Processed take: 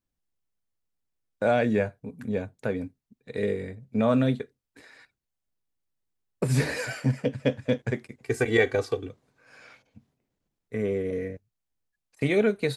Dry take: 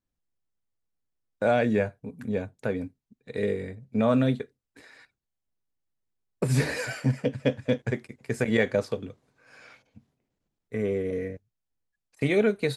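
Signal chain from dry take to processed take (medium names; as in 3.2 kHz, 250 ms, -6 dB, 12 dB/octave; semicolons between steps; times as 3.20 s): 8.23–9.09 s: comb 2.6 ms, depth 82%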